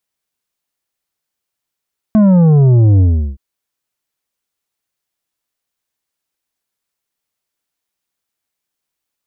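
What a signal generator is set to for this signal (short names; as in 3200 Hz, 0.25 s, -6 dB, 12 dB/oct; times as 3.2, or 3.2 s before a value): sub drop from 220 Hz, over 1.22 s, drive 8 dB, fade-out 0.37 s, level -6.5 dB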